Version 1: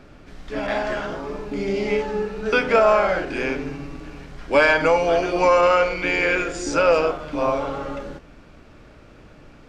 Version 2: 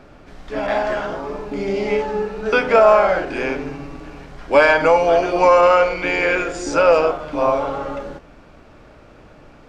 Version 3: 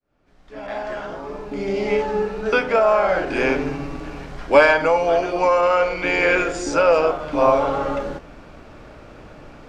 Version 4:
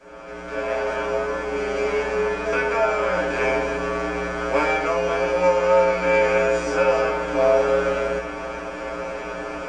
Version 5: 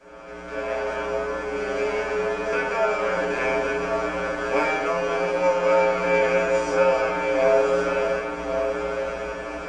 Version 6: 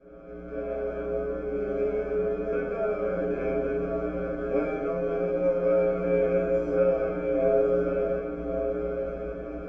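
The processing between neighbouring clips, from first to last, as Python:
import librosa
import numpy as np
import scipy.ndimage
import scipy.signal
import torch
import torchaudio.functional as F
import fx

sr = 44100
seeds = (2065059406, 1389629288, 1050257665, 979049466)

y1 = fx.peak_eq(x, sr, hz=770.0, db=5.5, octaves=1.6)
y2 = fx.fade_in_head(y1, sr, length_s=3.09)
y2 = fx.rider(y2, sr, range_db=5, speed_s=0.5)
y2 = F.gain(torch.from_numpy(y2), -1.5).numpy()
y3 = fx.bin_compress(y2, sr, power=0.4)
y3 = fx.comb_fb(y3, sr, f0_hz=60.0, decay_s=0.26, harmonics='odd', damping=0.0, mix_pct=100)
y4 = y3 + 10.0 ** (-5.5 / 20.0) * np.pad(y3, (int(1109 * sr / 1000.0), 0))[:len(y3)]
y4 = F.gain(torch.from_numpy(y4), -2.5).numpy()
y5 = np.convolve(y4, np.full(47, 1.0 / 47))[:len(y4)]
y5 = F.gain(torch.from_numpy(y5), 2.0).numpy()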